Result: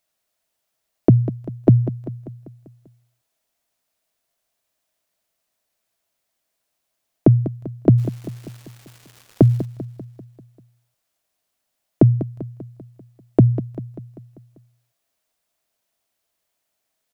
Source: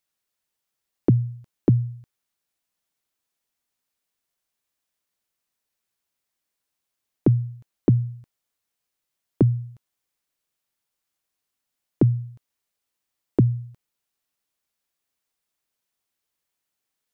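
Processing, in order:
parametric band 650 Hz +11 dB 0.31 octaves
0:07.97–0:09.64: surface crackle 510 per second −41 dBFS
on a send: repeating echo 196 ms, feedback 55%, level −13 dB
on the sum: level +5 dB

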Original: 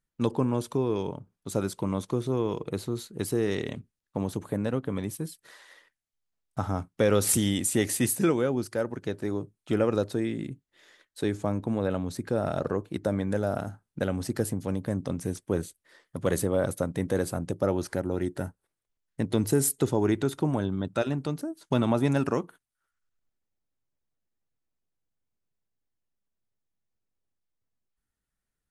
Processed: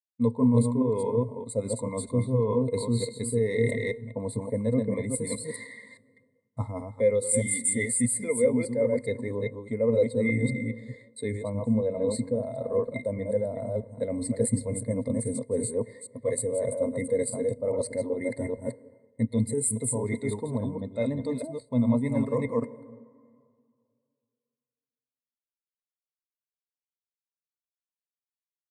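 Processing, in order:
delay that plays each chunk backwards 206 ms, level −4.5 dB
noise gate with hold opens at −49 dBFS
speech leveller within 4 dB 2 s
parametric band 8,800 Hz +10 dB 1.5 octaves
hollow resonant body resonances 660/2,100 Hz, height 17 dB, ringing for 85 ms
convolution reverb RT60 3.4 s, pre-delay 49 ms, DRR 17 dB
reversed playback
downward compressor 8 to 1, threshold −28 dBFS, peak gain reduction 15.5 dB
reversed playback
EQ curve with evenly spaced ripples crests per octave 0.97, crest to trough 16 dB
every bin expanded away from the loudest bin 1.5 to 1

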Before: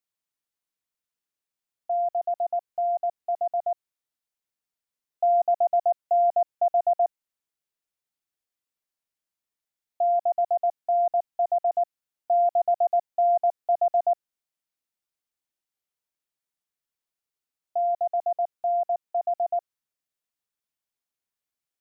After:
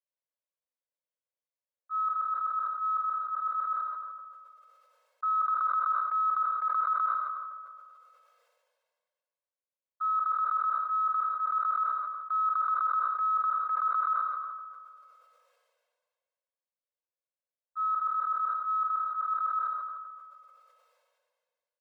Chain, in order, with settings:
frequency inversion band by band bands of 2,000 Hz
noise gate −26 dBFS, range −15 dB
transient designer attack −8 dB, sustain 0 dB
downward compressor 3 to 1, threshold −28 dBFS, peak gain reduction 7 dB
Chebyshev high-pass filter 470 Hz, order 8
spectral tilt −5.5 dB per octave
comb filter 1.9 ms, depth 69%
rectangular room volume 1,000 cubic metres, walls mixed, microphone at 1 metre
level that may fall only so fast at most 31 dB per second
level +5.5 dB

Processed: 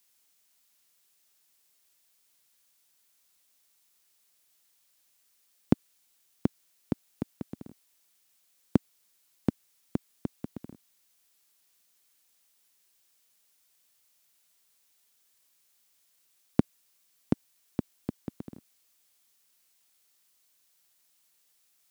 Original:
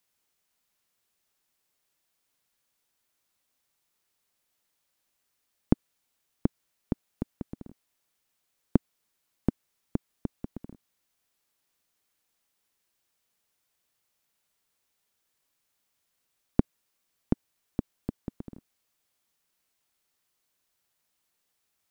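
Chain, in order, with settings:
high-pass filter 93 Hz 12 dB per octave
high-shelf EQ 2,500 Hz +10 dB

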